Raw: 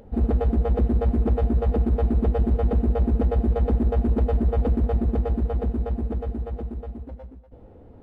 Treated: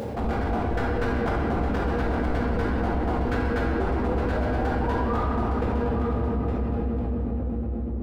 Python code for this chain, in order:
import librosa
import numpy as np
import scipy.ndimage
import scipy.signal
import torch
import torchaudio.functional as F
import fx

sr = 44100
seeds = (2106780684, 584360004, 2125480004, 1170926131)

y = fx.fade_out_tail(x, sr, length_s=2.63)
y = scipy.signal.sosfilt(scipy.signal.butter(4, 77.0, 'highpass', fs=sr, output='sos'), y)
y = 10.0 ** (-24.5 / 20.0) * (np.abs((y / 10.0 ** (-24.5 / 20.0) + 3.0) % 4.0 - 2.0) - 1.0)
y = fx.spec_paint(y, sr, seeds[0], shape='rise', start_s=3.6, length_s=1.7, low_hz=320.0, high_hz=1400.0, level_db=-37.0)
y = y * (1.0 - 0.97 / 2.0 + 0.97 / 2.0 * np.cos(2.0 * np.pi * 3.9 * (np.arange(len(y)) / sr)))
y = y + 10.0 ** (-8.0 / 20.0) * np.pad(y, (int(862 * sr / 1000.0), 0))[:len(y)]
y = fx.room_shoebox(y, sr, seeds[1], volume_m3=130.0, walls='hard', distance_m=0.82)
y = fx.env_flatten(y, sr, amount_pct=70)
y = y * 10.0 ** (-1.5 / 20.0)